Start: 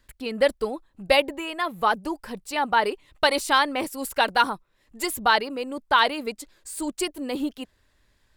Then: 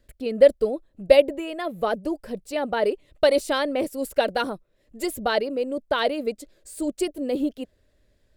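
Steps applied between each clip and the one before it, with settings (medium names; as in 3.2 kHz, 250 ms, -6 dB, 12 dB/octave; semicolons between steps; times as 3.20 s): resonant low shelf 740 Hz +6.5 dB, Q 3; trim -5 dB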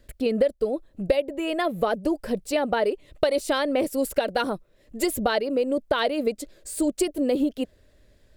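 compression 6:1, threshold -26 dBFS, peak gain reduction 17 dB; trim +6.5 dB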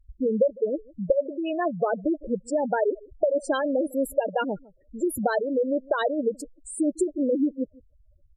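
delay 155 ms -23 dB; spectral gate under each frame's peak -10 dB strong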